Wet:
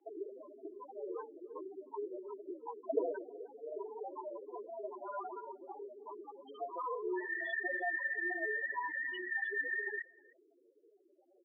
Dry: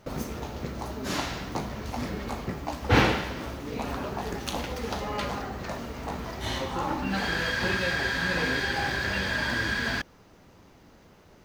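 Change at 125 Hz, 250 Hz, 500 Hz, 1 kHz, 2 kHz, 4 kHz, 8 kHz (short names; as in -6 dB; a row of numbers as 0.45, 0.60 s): under -40 dB, -16.5 dB, -7.0 dB, -12.0 dB, -9.0 dB, -27.0 dB, under -40 dB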